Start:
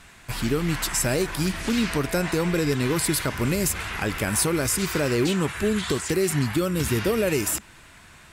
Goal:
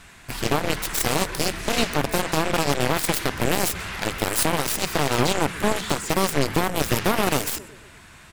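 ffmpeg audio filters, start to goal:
-filter_complex "[0:a]asplit=2[a][b];[b]adelay=123,lowpass=f=2.6k:p=1,volume=-17dB,asplit=2[c][d];[d]adelay=123,lowpass=f=2.6k:p=1,volume=0.55,asplit=2[e][f];[f]adelay=123,lowpass=f=2.6k:p=1,volume=0.55,asplit=2[g][h];[h]adelay=123,lowpass=f=2.6k:p=1,volume=0.55,asplit=2[i][j];[j]adelay=123,lowpass=f=2.6k:p=1,volume=0.55[k];[a][c][e][g][i][k]amix=inputs=6:normalize=0,aeval=exprs='0.316*(cos(1*acos(clip(val(0)/0.316,-1,1)))-cos(1*PI/2))+0.0501*(cos(4*acos(clip(val(0)/0.316,-1,1)))-cos(4*PI/2))+0.1*(cos(7*acos(clip(val(0)/0.316,-1,1)))-cos(7*PI/2))':c=same"

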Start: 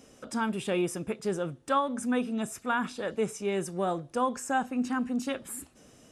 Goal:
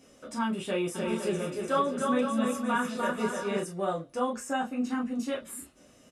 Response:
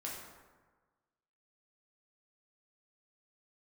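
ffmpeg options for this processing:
-filter_complex "[0:a]asplit=3[a][b][c];[a]afade=t=out:st=0.94:d=0.02[d];[b]aecho=1:1:300|510|657|759.9|831.9:0.631|0.398|0.251|0.158|0.1,afade=t=in:st=0.94:d=0.02,afade=t=out:st=3.6:d=0.02[e];[c]afade=t=in:st=3.6:d=0.02[f];[d][e][f]amix=inputs=3:normalize=0[g];[1:a]atrim=start_sample=2205,afade=t=out:st=0.14:d=0.01,atrim=end_sample=6615,asetrate=83790,aresample=44100[h];[g][h]afir=irnorm=-1:irlink=0,volume=6dB"

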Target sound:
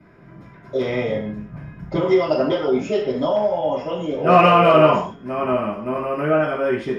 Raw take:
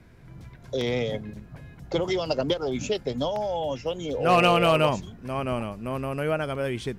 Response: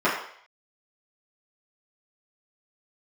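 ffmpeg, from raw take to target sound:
-filter_complex "[0:a]asettb=1/sr,asplit=3[a][b][c];[a]atrim=end=0.774[d];[b]atrim=start=0.77:end=1.97,asetpts=PTS-STARTPTS,afade=t=in:d=0.004:c=qsin,afade=t=out:st=1.196:d=0.004:c=qsin,asubboost=boost=11:cutoff=170[e];[c]atrim=start=1.966[f];[d][e]acrossfade=d=0.004:c1=hsin:c2=qsin[g];[g][f]acrossfade=d=0.004:c1=qsin:c2=hsin[h];[1:a]atrim=start_sample=2205,afade=t=out:st=0.22:d=0.01,atrim=end_sample=10143[i];[h][i]afir=irnorm=-1:irlink=0,volume=-11dB"

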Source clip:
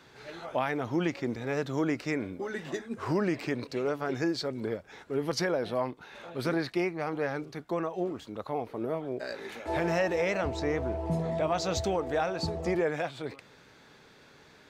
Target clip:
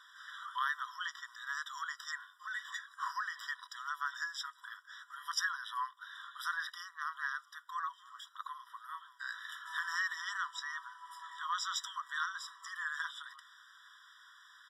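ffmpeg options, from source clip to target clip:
-af "aresample=32000,aresample=44100,afftfilt=real='re*eq(mod(floor(b*sr/1024/980),2),1)':imag='im*eq(mod(floor(b*sr/1024/980),2),1)':win_size=1024:overlap=0.75,volume=2dB"

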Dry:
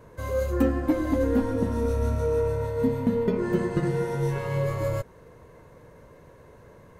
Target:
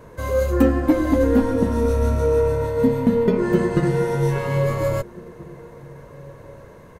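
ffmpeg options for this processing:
-filter_complex "[0:a]equalizer=f=100:t=o:w=0.27:g=-5,asplit=2[a][b];[b]adelay=1633,volume=-21dB,highshelf=f=4k:g=-36.7[c];[a][c]amix=inputs=2:normalize=0,volume=6.5dB"

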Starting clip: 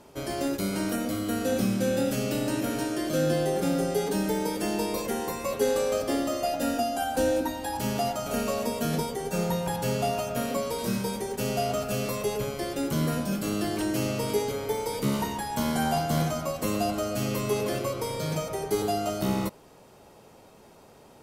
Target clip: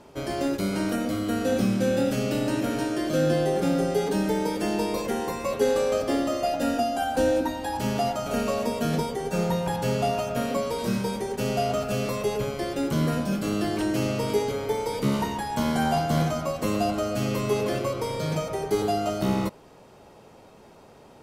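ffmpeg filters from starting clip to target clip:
-af "highshelf=f=7.6k:g=-10,volume=2.5dB"

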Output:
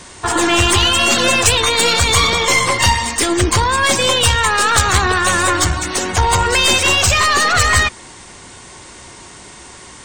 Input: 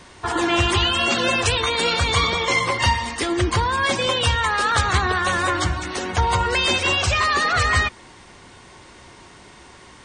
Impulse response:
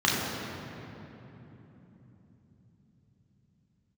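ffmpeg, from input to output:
-af "equalizer=f=8k:t=o:w=0.98:g=11,aeval=exprs='0.708*(cos(1*acos(clip(val(0)/0.708,-1,1)))-cos(1*PI/2))+0.112*(cos(4*acos(clip(val(0)/0.708,-1,1)))-cos(4*PI/2))':c=same,acontrast=75,volume=-1dB"

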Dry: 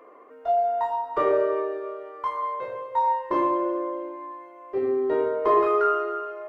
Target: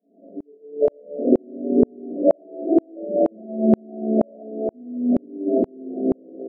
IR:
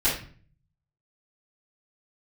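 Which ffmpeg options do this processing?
-filter_complex "[0:a]asoftclip=type=tanh:threshold=-24.5dB,aecho=1:1:4.7:0.42,alimiter=level_in=8dB:limit=-24dB:level=0:latency=1:release=26,volume=-8dB,dynaudnorm=f=120:g=9:m=10.5dB,asetrate=27781,aresample=44100,atempo=1.5874,asplit=6[a][b][c][d][e][f];[b]adelay=436,afreqshift=63,volume=-11dB[g];[c]adelay=872,afreqshift=126,volume=-17.2dB[h];[d]adelay=1308,afreqshift=189,volume=-23.4dB[i];[e]adelay=1744,afreqshift=252,volume=-29.6dB[j];[f]adelay=2180,afreqshift=315,volume=-35.8dB[k];[a][g][h][i][j][k]amix=inputs=6:normalize=0,acrusher=samples=20:mix=1:aa=0.000001:lfo=1:lforange=32:lforate=1[l];[1:a]atrim=start_sample=2205,atrim=end_sample=3087,asetrate=27342,aresample=44100[m];[l][m]afir=irnorm=-1:irlink=0,afftfilt=real='re*between(b*sr/4096,180,720)':imag='im*between(b*sr/4096,180,720)':win_size=4096:overlap=0.75,aeval=exprs='val(0)*pow(10,-40*if(lt(mod(-2.1*n/s,1),2*abs(-2.1)/1000),1-mod(-2.1*n/s,1)/(2*abs(-2.1)/1000),(mod(-2.1*n/s,1)-2*abs(-2.1)/1000)/(1-2*abs(-2.1)/1000))/20)':c=same"

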